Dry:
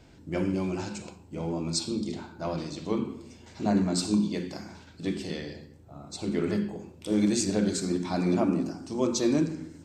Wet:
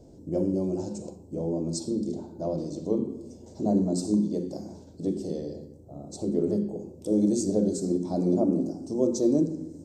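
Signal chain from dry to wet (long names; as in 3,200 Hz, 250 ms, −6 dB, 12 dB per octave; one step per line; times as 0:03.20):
drawn EQ curve 100 Hz 0 dB, 560 Hz +7 dB, 1,500 Hz −21 dB, 2,400 Hz −24 dB, 6,000 Hz −2 dB
in parallel at −2.5 dB: downward compressor, threshold −35 dBFS, peak gain reduction 18 dB
on the sum: level −3.5 dB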